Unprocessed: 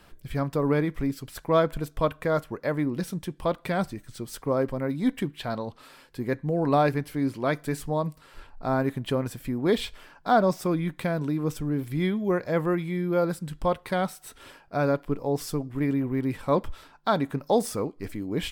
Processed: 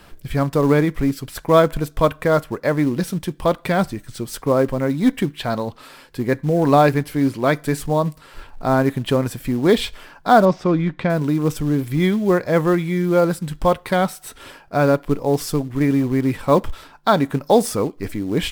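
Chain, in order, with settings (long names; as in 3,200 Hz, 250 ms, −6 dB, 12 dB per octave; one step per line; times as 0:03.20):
in parallel at −5.5 dB: floating-point word with a short mantissa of 2 bits
0:10.45–0:11.10: on the sum: high-frequency loss of the air 170 metres
level +4.5 dB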